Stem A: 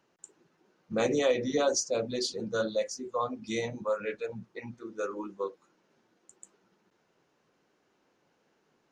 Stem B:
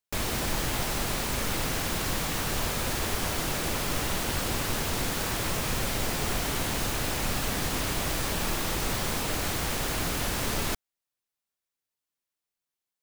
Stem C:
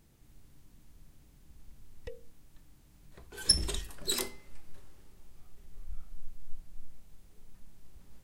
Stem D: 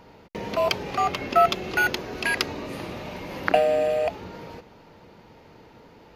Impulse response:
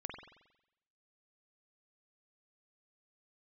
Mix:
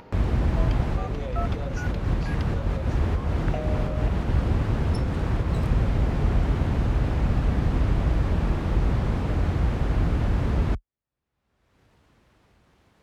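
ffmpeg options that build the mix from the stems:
-filter_complex "[0:a]volume=0.266,asplit=2[s0][s1];[1:a]highpass=f=41:w=0.5412,highpass=f=41:w=1.3066,aemphasis=mode=reproduction:type=riaa,volume=0.891[s2];[2:a]adelay=1450,volume=0.211[s3];[3:a]volume=0.188[s4];[s1]apad=whole_len=574426[s5];[s2][s5]sidechaincompress=threshold=0.00794:ratio=4:attack=11:release=154[s6];[s0][s6][s3][s4]amix=inputs=4:normalize=0,highshelf=f=3500:g=-11,acompressor=mode=upward:threshold=0.0224:ratio=2.5"

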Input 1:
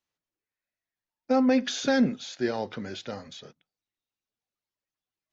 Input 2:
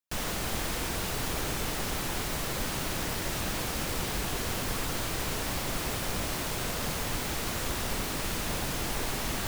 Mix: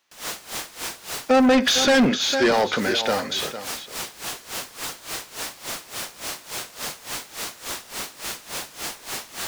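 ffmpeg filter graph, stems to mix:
-filter_complex "[0:a]volume=1.33,asplit=3[s0][s1][s2];[s1]volume=0.188[s3];[1:a]bass=f=250:g=0,treble=f=4000:g=7,aeval=exprs='val(0)*pow(10,-19*(0.5-0.5*cos(2*PI*3.5*n/s))/20)':c=same,volume=0.251[s4];[s2]apad=whole_len=417754[s5];[s4][s5]sidechaincompress=threshold=0.0316:ratio=4:attack=16:release=932[s6];[s3]aecho=0:1:454:1[s7];[s0][s6][s7]amix=inputs=3:normalize=0,asplit=2[s8][s9];[s9]highpass=f=720:p=1,volume=15.8,asoftclip=type=tanh:threshold=0.335[s10];[s8][s10]amix=inputs=2:normalize=0,lowpass=f=5400:p=1,volume=0.501"

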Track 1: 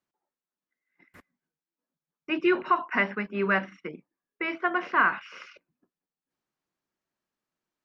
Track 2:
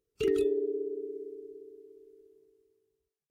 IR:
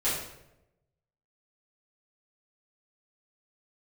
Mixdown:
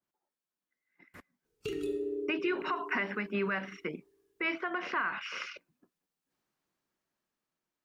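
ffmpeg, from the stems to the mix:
-filter_complex "[0:a]acompressor=threshold=0.0501:ratio=3,alimiter=level_in=1.5:limit=0.0631:level=0:latency=1:release=182,volume=0.668,volume=0.794,asplit=2[s0][s1];[1:a]acompressor=threshold=0.0126:ratio=2.5,adelay=1450,volume=0.531,asplit=2[s2][s3];[s3]volume=0.251[s4];[s1]apad=whole_len=209496[s5];[s2][s5]sidechaincompress=threshold=0.00891:ratio=8:attack=16:release=895[s6];[2:a]atrim=start_sample=2205[s7];[s4][s7]afir=irnorm=-1:irlink=0[s8];[s0][s6][s8]amix=inputs=3:normalize=0,dynaudnorm=f=280:g=9:m=1.88,adynamicequalizer=threshold=0.00708:dfrequency=1700:dqfactor=0.7:tfrequency=1700:tqfactor=0.7:attack=5:release=100:ratio=0.375:range=2:mode=boostabove:tftype=highshelf"

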